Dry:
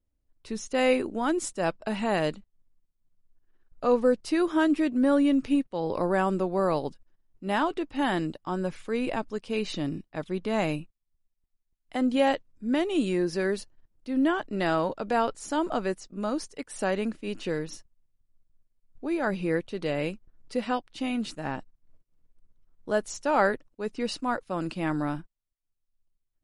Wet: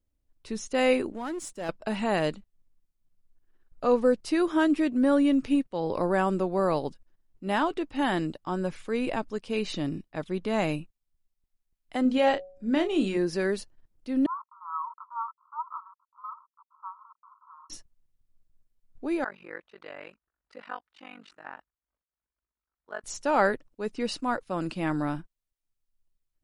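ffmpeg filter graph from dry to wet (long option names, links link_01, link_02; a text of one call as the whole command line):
ffmpeg -i in.wav -filter_complex "[0:a]asettb=1/sr,asplit=3[link_01][link_02][link_03];[link_01]atrim=end=1.124[link_04];[link_02]atrim=start=1.12:end=1.69,asetpts=PTS-STARTPTS,afade=type=in:duration=0.004:curve=qsin,afade=type=out:start_time=0.566:duration=0.004:curve=qsin,aeval=exprs='if(lt(val(0),0),0.447*val(0),val(0))':channel_layout=same,aeval=exprs='(tanh(17.8*val(0)+0.4)-tanh(0.4))/17.8':channel_layout=same[link_05];[link_03]atrim=start=1.686[link_06];[link_04][link_05]acrossfade=duration=0.004:curve1=hsin:curve2=qsin[link_07];[link_07][link_06]acrossfade=duration=0.004:curve1=qsin:curve2=hsin,asettb=1/sr,asplit=3[link_08][link_09][link_10];[link_08]atrim=end=12.024[link_11];[link_09]atrim=start=12.02:end=13.17,asetpts=PTS-STARTPTS,afade=type=in:duration=0.004:curve=qsin,afade=type=out:start_time=1.146:duration=0.004:curve=qsin,lowpass=7200,asplit=2[link_12][link_13];[link_13]adelay=31,volume=-8.5dB[link_14];[link_12][link_14]amix=inputs=2:normalize=0,atrim=end_sample=50715,bandreject=frequency=185:width_type=h:width=4,bandreject=frequency=370:width_type=h:width=4,bandreject=frequency=555:width_type=h:width=4,bandreject=frequency=740:width_type=h:width=4[link_15];[link_10]atrim=start=13.166[link_16];[link_11][link_15]acrossfade=duration=0.004:curve1=hsin:curve2=qsin[link_17];[link_17][link_16]acrossfade=duration=0.004:curve1=qsin:curve2=hsin,asettb=1/sr,asplit=3[link_18][link_19][link_20];[link_18]atrim=end=14.264[link_21];[link_19]atrim=start=14.26:end=17.7,asetpts=PTS-STARTPTS,afade=type=in:duration=0.004:curve=qsin,afade=type=out:start_time=3.436:duration=0.004:curve=qsin,acrusher=bits=5:mix=0:aa=0.5,asuperpass=centerf=1100:order=12:qfactor=2.7,aecho=1:1:2.9:0.3,atrim=end_sample=151704[link_22];[link_20]atrim=start=17.696[link_23];[link_21][link_22]acrossfade=duration=0.004:curve1=hsin:curve2=qsin[link_24];[link_24][link_23]acrossfade=duration=0.004:curve1=qsin:curve2=hsin,asettb=1/sr,asplit=3[link_25][link_26][link_27];[link_25]atrim=end=19.244[link_28];[link_26]atrim=start=19.24:end=23.04,asetpts=PTS-STARTPTS,afade=type=in:duration=0.004:curve=qsin,afade=type=out:start_time=3.796:duration=0.004:curve=qsin,tremolo=f=48:d=1,bandpass=frequency=1400:width_type=q:width=1.5[link_29];[link_27]atrim=start=23.036[link_30];[link_28][link_29]acrossfade=duration=0.004:curve1=hsin:curve2=qsin[link_31];[link_31][link_30]acrossfade=duration=0.004:curve1=qsin:curve2=hsin" out.wav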